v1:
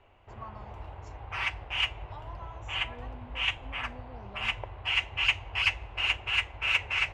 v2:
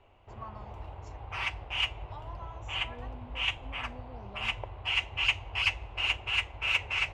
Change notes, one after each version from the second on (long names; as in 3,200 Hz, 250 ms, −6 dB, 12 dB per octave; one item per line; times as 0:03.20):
background: add parametric band 1,700 Hz −5 dB 0.77 octaves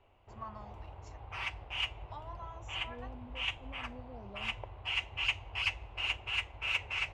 background −5.0 dB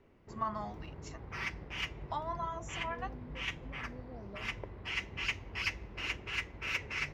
first voice +9.5 dB
background: remove drawn EQ curve 110 Hz 0 dB, 160 Hz −16 dB, 440 Hz −7 dB, 760 Hz +7 dB, 1,900 Hz −6 dB, 2,800 Hz +7 dB, 5,500 Hz −8 dB, 8,300 Hz +5 dB, 14,000 Hz −10 dB